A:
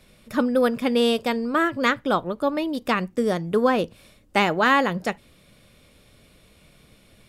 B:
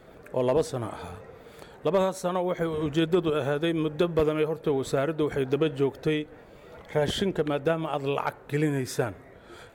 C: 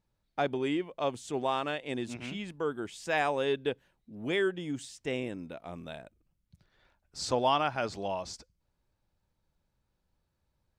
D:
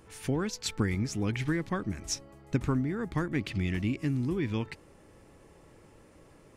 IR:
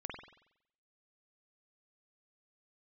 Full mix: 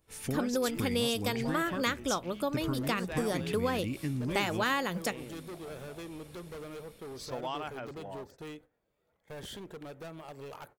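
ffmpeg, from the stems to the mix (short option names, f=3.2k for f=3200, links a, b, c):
-filter_complex "[0:a]adynamicequalizer=threshold=0.02:dfrequency=2400:dqfactor=0.7:tfrequency=2400:tqfactor=0.7:attack=5:release=100:ratio=0.375:range=3:mode=boostabove:tftype=highshelf,volume=-5.5dB[a];[1:a]asoftclip=type=hard:threshold=-26dB,adelay=2350,volume=-14.5dB[b];[2:a]afwtdn=0.00631,volume=-10.5dB[c];[3:a]volume=-3dB[d];[a][b][c][d]amix=inputs=4:normalize=0,agate=range=-16dB:threshold=-54dB:ratio=16:detection=peak,highshelf=f=8k:g=11,acompressor=threshold=-29dB:ratio=2.5"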